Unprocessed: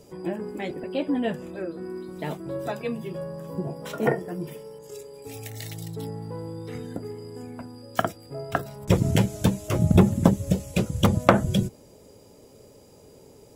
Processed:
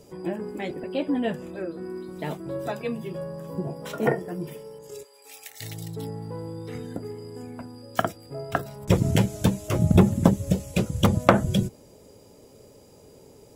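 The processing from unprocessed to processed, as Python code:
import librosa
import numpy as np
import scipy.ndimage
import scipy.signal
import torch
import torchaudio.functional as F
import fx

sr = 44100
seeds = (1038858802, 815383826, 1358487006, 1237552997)

y = fx.highpass(x, sr, hz=1000.0, slope=12, at=(5.03, 5.6), fade=0.02)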